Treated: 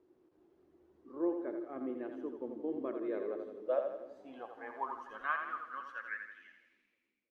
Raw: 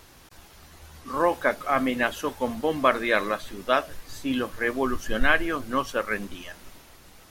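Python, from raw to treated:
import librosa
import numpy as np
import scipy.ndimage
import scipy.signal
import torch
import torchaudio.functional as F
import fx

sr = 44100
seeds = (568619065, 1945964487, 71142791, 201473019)

y = fx.fade_out_tail(x, sr, length_s=2.33)
y = fx.filter_sweep_bandpass(y, sr, from_hz=350.0, to_hz=2300.0, start_s=2.88, end_s=6.69, q=7.3)
y = fx.echo_split(y, sr, split_hz=330.0, low_ms=322, high_ms=84, feedback_pct=52, wet_db=-6.5)
y = y * librosa.db_to_amplitude(-1.5)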